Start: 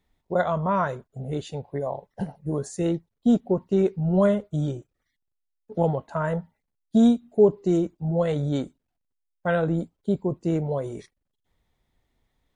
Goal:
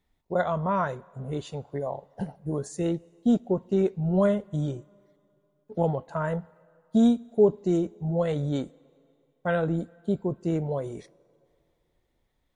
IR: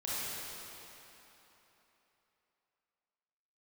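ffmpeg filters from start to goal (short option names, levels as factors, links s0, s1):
-filter_complex "[0:a]asplit=2[s0][s1];[1:a]atrim=start_sample=2205,asetrate=52920,aresample=44100,lowshelf=f=130:g=-10[s2];[s1][s2]afir=irnorm=-1:irlink=0,volume=0.0398[s3];[s0][s3]amix=inputs=2:normalize=0,volume=0.75"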